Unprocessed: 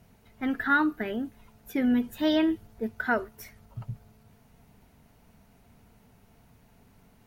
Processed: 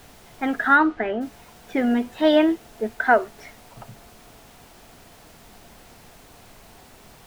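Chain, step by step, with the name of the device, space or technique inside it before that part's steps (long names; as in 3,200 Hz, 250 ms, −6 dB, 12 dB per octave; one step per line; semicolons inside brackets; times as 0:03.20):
horn gramophone (band-pass filter 290–3,700 Hz; parametric band 720 Hz +7 dB 0.56 octaves; tape wow and flutter; pink noise bed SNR 24 dB)
0:00.75–0:01.20: low-pass filter 4,400 Hz → 2,400 Hz 12 dB per octave
level +7 dB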